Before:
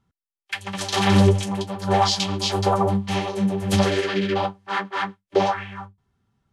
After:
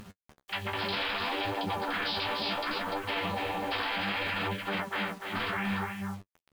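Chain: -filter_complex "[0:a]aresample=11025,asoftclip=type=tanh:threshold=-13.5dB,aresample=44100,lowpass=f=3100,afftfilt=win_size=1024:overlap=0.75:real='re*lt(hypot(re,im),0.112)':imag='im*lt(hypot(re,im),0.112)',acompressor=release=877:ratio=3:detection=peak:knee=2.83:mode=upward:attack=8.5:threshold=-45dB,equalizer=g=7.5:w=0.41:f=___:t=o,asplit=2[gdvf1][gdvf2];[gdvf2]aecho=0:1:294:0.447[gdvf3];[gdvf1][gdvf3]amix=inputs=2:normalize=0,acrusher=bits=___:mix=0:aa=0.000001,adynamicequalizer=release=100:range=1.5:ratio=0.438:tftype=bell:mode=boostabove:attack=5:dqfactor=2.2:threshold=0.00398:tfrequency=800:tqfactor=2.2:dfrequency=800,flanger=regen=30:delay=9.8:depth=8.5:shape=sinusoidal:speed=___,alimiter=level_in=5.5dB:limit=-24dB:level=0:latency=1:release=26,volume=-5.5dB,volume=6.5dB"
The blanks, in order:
210, 8, 0.65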